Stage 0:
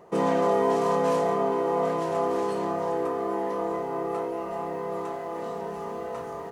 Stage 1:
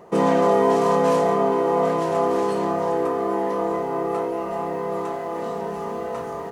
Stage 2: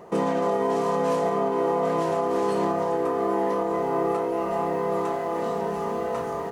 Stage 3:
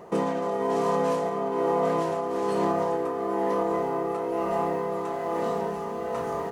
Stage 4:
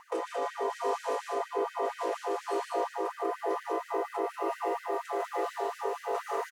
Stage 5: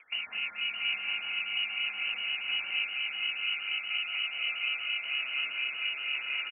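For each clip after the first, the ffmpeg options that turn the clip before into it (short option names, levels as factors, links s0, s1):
-af "equalizer=f=220:t=o:w=0.45:g=2.5,volume=1.78"
-af "alimiter=limit=0.158:level=0:latency=1:release=264,volume=1.12"
-af "tremolo=f=1.1:d=0.41"
-af "acompressor=threshold=0.0447:ratio=6,aecho=1:1:116.6|151.6|192.4:0.316|0.562|0.708,afftfilt=real='re*gte(b*sr/1024,260*pow(1500/260,0.5+0.5*sin(2*PI*4.2*pts/sr)))':imag='im*gte(b*sr/1024,260*pow(1500/260,0.5+0.5*sin(2*PI*4.2*pts/sr)))':win_size=1024:overlap=0.75"
-af "aecho=1:1:204|614:0.355|0.531,lowpass=f=2800:t=q:w=0.5098,lowpass=f=2800:t=q:w=0.6013,lowpass=f=2800:t=q:w=0.9,lowpass=f=2800:t=q:w=2.563,afreqshift=-3300,volume=0.794"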